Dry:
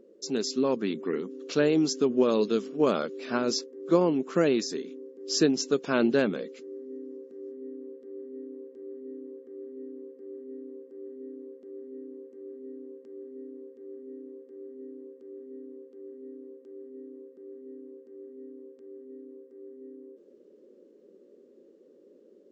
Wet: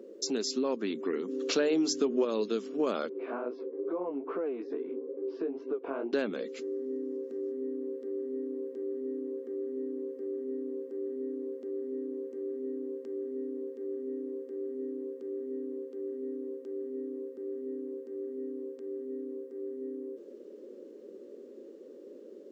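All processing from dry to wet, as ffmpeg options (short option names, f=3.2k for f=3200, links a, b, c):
-filter_complex "[0:a]asettb=1/sr,asplit=3[a][b][c];[a]atrim=end=1.284[d];[b]atrim=start=1.28:end=2.25,asetpts=PTS-STARTPTS,afade=t=in:d=0.004:c=qsin,afade=t=out:st=0.966:d=0.004:c=qsin,bandreject=f=50:t=h:w=6,bandreject=f=100:t=h:w=6,bandreject=f=150:t=h:w=6,bandreject=f=200:t=h:w=6,bandreject=f=250:t=h:w=6,bandreject=f=300:t=h:w=6,bandreject=f=350:t=h:w=6,bandreject=f=400:t=h:w=6,acontrast=42[e];[c]atrim=start=2.246[f];[d][e]acrossfade=d=0.004:c1=hsin:c2=qsin[g];[g][f]acrossfade=d=0.004:c1=qsin:c2=hsin,asettb=1/sr,asplit=3[h][i][j];[h]atrim=end=3.094[k];[i]atrim=start=3.09:end=6.13,asetpts=PTS-STARTPTS,afade=t=in:d=0.004:c=qsin,afade=t=out:st=3.036:d=0.004:c=qsin,acompressor=threshold=-37dB:ratio=3:attack=3.2:release=140:knee=1:detection=peak,flanger=delay=15.5:depth=6.5:speed=2.3,highpass=180,equalizer=f=210:t=q:w=4:g=-8,equalizer=f=310:t=q:w=4:g=4,equalizer=f=450:t=q:w=4:g=7,equalizer=f=700:t=q:w=4:g=6,equalizer=f=1k:t=q:w=4:g=5,equalizer=f=1.8k:t=q:w=4:g=-7,lowpass=f=2.1k:w=0.5412,lowpass=f=2.1k:w=1.3066[l];[j]atrim=start=6.126[m];[k][l]acrossfade=d=0.004:c1=hsin:c2=qsin[n];[n][m]acrossfade=d=0.004:c1=qsin:c2=hsin,acompressor=threshold=-41dB:ratio=2.5,highpass=f=220:w=0.5412,highpass=f=220:w=1.3066,volume=8dB"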